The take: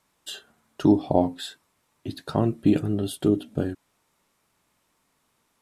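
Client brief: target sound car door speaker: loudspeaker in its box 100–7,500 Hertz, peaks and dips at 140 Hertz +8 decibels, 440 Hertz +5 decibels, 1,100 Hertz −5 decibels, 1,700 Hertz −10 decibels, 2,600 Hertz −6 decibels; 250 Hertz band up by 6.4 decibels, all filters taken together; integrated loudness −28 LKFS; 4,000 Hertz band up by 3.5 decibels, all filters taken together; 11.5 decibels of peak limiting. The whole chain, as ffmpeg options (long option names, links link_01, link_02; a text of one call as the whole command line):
ffmpeg -i in.wav -af "equalizer=frequency=250:width_type=o:gain=7.5,equalizer=frequency=4000:width_type=o:gain=5.5,alimiter=limit=-13.5dB:level=0:latency=1,highpass=100,equalizer=frequency=140:width_type=q:width=4:gain=8,equalizer=frequency=440:width_type=q:width=4:gain=5,equalizer=frequency=1100:width_type=q:width=4:gain=-5,equalizer=frequency=1700:width_type=q:width=4:gain=-10,equalizer=frequency=2600:width_type=q:width=4:gain=-6,lowpass=frequency=7500:width=0.5412,lowpass=frequency=7500:width=1.3066,volume=-2.5dB" out.wav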